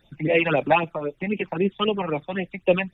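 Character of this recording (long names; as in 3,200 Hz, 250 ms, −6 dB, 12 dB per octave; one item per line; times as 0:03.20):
phaser sweep stages 8, 3.8 Hz, lowest notch 390–1,500 Hz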